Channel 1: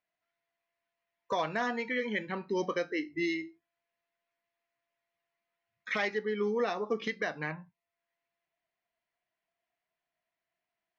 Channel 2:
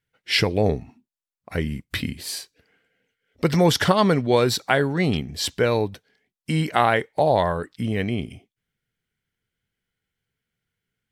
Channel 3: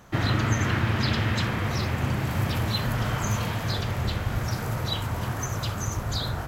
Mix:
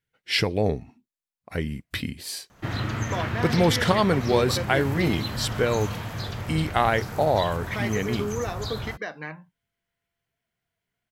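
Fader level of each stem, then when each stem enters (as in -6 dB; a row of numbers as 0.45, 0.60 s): 0.0, -3.0, -4.5 dB; 1.80, 0.00, 2.50 s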